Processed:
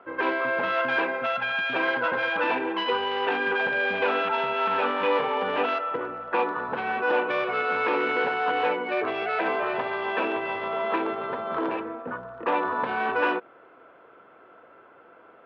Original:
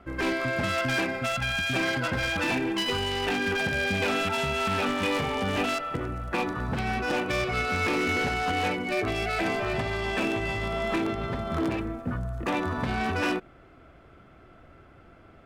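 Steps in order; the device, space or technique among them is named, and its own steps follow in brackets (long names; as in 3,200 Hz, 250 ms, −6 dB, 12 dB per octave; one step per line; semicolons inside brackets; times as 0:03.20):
phone earpiece (loudspeaker in its box 350–3,200 Hz, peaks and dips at 480 Hz +9 dB, 970 Hz +10 dB, 1,500 Hz +5 dB, 2,100 Hz −3 dB)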